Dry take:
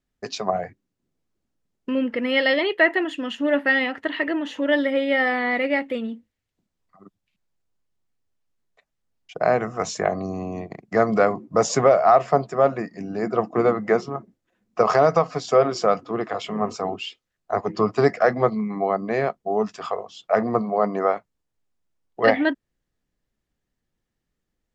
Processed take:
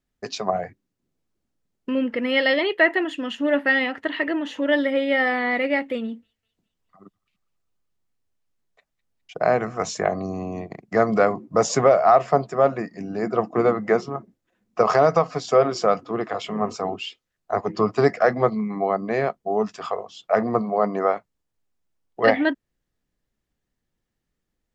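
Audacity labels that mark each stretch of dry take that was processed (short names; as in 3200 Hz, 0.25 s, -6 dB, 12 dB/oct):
6.020000	9.750000	thin delay 0.205 s, feedback 55%, high-pass 2200 Hz, level -17.5 dB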